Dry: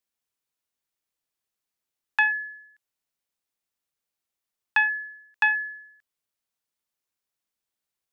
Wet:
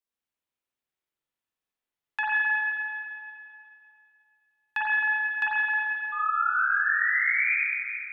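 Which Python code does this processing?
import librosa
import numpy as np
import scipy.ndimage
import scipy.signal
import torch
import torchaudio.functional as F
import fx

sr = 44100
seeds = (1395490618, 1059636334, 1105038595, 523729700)

y = fx.spec_paint(x, sr, seeds[0], shape='rise', start_s=6.12, length_s=1.44, low_hz=1200.0, high_hz=2500.0, level_db=-24.0)
y = fx.rev_spring(y, sr, rt60_s=2.5, pass_ms=(43, 51), chirp_ms=50, drr_db=-7.5)
y = y * 10.0 ** (-8.5 / 20.0)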